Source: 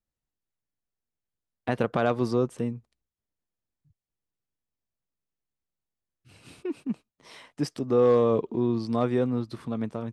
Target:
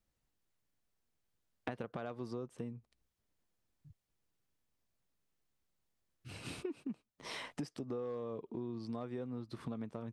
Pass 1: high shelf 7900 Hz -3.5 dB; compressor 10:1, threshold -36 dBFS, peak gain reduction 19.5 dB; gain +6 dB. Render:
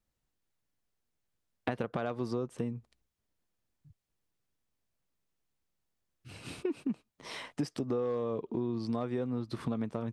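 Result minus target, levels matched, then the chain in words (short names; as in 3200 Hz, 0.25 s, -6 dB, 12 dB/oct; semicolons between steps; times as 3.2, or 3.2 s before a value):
compressor: peak gain reduction -8 dB
high shelf 7900 Hz -3.5 dB; compressor 10:1, threshold -45 dBFS, peak gain reduction 27.5 dB; gain +6 dB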